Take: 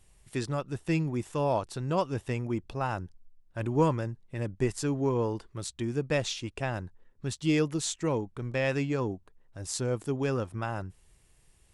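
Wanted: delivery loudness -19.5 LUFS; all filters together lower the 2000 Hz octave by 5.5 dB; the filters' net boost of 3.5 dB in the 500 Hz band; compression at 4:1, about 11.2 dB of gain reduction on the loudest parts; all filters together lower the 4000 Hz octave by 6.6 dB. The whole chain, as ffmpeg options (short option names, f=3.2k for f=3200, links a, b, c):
-af "equalizer=f=500:t=o:g=4.5,equalizer=f=2k:t=o:g=-5.5,equalizer=f=4k:t=o:g=-7,acompressor=threshold=-31dB:ratio=4,volume=16.5dB"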